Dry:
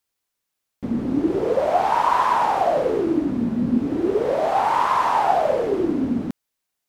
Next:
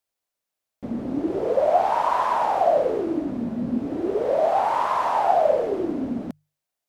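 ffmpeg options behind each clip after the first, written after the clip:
ffmpeg -i in.wav -af "equalizer=frequency=630:width_type=o:width=0.64:gain=8,bandreject=frequency=50:width_type=h:width=6,bandreject=frequency=100:width_type=h:width=6,bandreject=frequency=150:width_type=h:width=6,volume=-5.5dB" out.wav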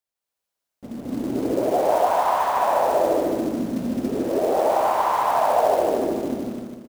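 ffmpeg -i in.wav -filter_complex "[0:a]asplit=2[link_01][link_02];[link_02]aecho=0:1:149|298|447|596|745|894|1043:0.708|0.368|0.191|0.0995|0.0518|0.0269|0.014[link_03];[link_01][link_03]amix=inputs=2:normalize=0,acrusher=bits=5:mode=log:mix=0:aa=0.000001,asplit=2[link_04][link_05];[link_05]aecho=0:1:212.8|282.8:0.891|1[link_06];[link_04][link_06]amix=inputs=2:normalize=0,volume=-5.5dB" out.wav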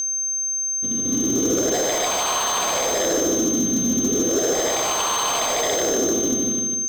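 ffmpeg -i in.wav -af "aeval=exprs='val(0)+0.0562*sin(2*PI*6300*n/s)':channel_layout=same,volume=18.5dB,asoftclip=hard,volume=-18.5dB,superequalizer=8b=0.447:9b=0.355:13b=3.55:16b=0.562,volume=3.5dB" out.wav

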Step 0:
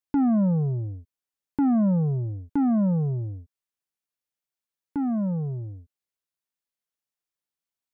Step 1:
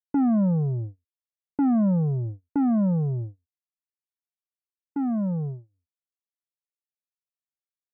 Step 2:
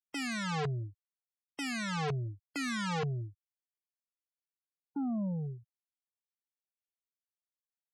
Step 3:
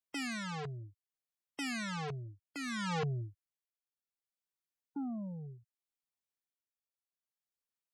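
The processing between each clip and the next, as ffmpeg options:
ffmpeg -i in.wav -af "agate=range=-35dB:threshold=-31dB:ratio=16:detection=peak" out.wav
ffmpeg -i in.wav -af "aeval=exprs='(mod(13.3*val(0)+1,2)-1)/13.3':channel_layout=same,afftfilt=real='re*gte(hypot(re,im),0.0224)':imag='im*gte(hypot(re,im),0.0224)':win_size=1024:overlap=0.75,volume=-8dB" out.wav
ffmpeg -i in.wav -af "tremolo=f=0.65:d=0.58,volume=-1dB" out.wav

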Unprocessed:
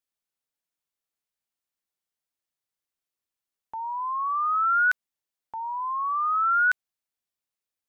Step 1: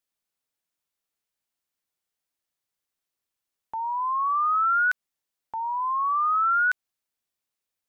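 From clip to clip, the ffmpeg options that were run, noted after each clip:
ffmpeg -i in.wav -af "acompressor=threshold=-23dB:ratio=6,volume=3dB" out.wav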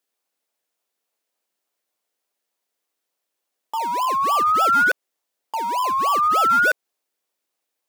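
ffmpeg -i in.wav -filter_complex "[0:a]asplit=2[link_01][link_02];[link_02]acrusher=samples=30:mix=1:aa=0.000001:lfo=1:lforange=18:lforate=3.4,volume=-6.5dB[link_03];[link_01][link_03]amix=inputs=2:normalize=0,highpass=410,volume=5dB" out.wav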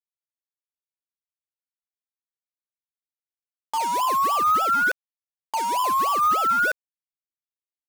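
ffmpeg -i in.wav -af "acrusher=bits=4:mix=0:aa=0.5,alimiter=limit=-15dB:level=0:latency=1:release=133" out.wav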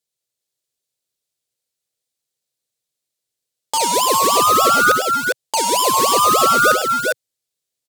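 ffmpeg -i in.wav -filter_complex "[0:a]equalizer=frequency=125:width_type=o:width=1:gain=9,equalizer=frequency=500:width_type=o:width=1:gain=11,equalizer=frequency=1000:width_type=o:width=1:gain=-5,equalizer=frequency=4000:width_type=o:width=1:gain=8,equalizer=frequency=8000:width_type=o:width=1:gain=8,equalizer=frequency=16000:width_type=o:width=1:gain=5,asplit=2[link_01][link_02];[link_02]aecho=0:1:102|398|406:0.282|0.299|0.562[link_03];[link_01][link_03]amix=inputs=2:normalize=0,volume=5.5dB" out.wav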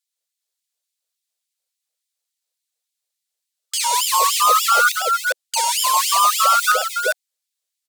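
ffmpeg -i in.wav -af "afftfilt=real='re*gte(b*sr/1024,380*pow(1900/380,0.5+0.5*sin(2*PI*3.5*pts/sr)))':imag='im*gte(b*sr/1024,380*pow(1900/380,0.5+0.5*sin(2*PI*3.5*pts/sr)))':win_size=1024:overlap=0.75" out.wav

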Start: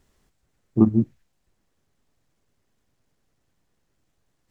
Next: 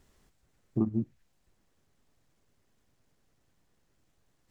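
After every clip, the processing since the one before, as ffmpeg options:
ffmpeg -i in.wav -af "acompressor=threshold=-30dB:ratio=2.5" out.wav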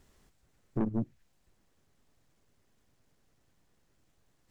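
ffmpeg -i in.wav -af "aeval=exprs='(tanh(22.4*val(0)+0.5)-tanh(0.5))/22.4':channel_layout=same,volume=3dB" out.wav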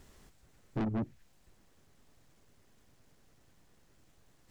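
ffmpeg -i in.wav -af "asoftclip=type=tanh:threshold=-35.5dB,volume=6dB" out.wav

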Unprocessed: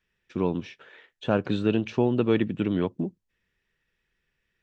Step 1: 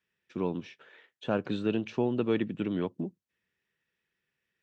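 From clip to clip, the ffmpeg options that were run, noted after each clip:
ffmpeg -i in.wav -af "highpass=120,volume=-5dB" out.wav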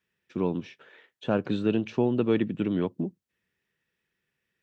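ffmpeg -i in.wav -af "lowshelf=frequency=480:gain=3.5,volume=1.5dB" out.wav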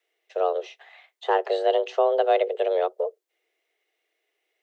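ffmpeg -i in.wav -af "afreqshift=270,volume=3.5dB" out.wav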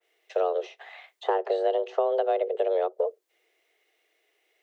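ffmpeg -i in.wav -filter_complex "[0:a]acrossover=split=430|1500[link_01][link_02][link_03];[link_01]acompressor=threshold=-37dB:ratio=4[link_04];[link_02]acompressor=threshold=-33dB:ratio=4[link_05];[link_03]acompressor=threshold=-52dB:ratio=4[link_06];[link_04][link_05][link_06]amix=inputs=3:normalize=0,adynamicequalizer=threshold=0.00398:dfrequency=1700:dqfactor=0.7:tfrequency=1700:tqfactor=0.7:attack=5:release=100:ratio=0.375:range=2:mode=cutabove:tftype=highshelf,volume=6dB" out.wav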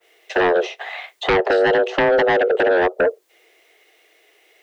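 ffmpeg -i in.wav -af "aeval=exprs='0.251*sin(PI/2*3.55*val(0)/0.251)':channel_layout=same" out.wav

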